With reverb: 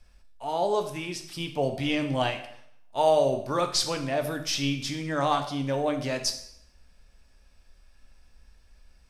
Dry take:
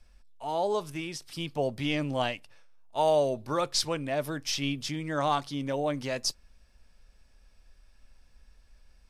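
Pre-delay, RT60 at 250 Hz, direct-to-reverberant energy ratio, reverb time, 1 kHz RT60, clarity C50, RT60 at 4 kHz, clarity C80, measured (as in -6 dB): 5 ms, 0.70 s, 5.5 dB, 0.70 s, 0.70 s, 10.0 dB, 0.65 s, 12.5 dB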